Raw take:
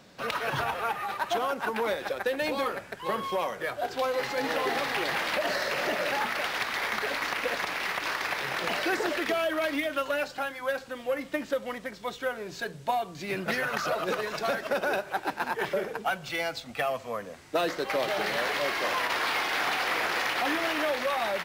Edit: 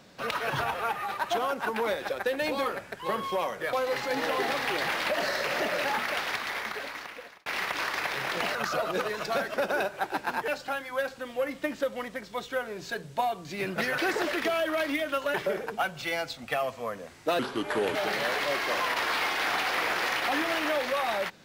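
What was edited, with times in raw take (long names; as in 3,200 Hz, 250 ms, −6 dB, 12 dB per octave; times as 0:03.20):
0:03.73–0:04.00: remove
0:06.45–0:07.73: fade out
0:08.82–0:10.18: swap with 0:13.68–0:15.61
0:17.66–0:18.09: play speed 76%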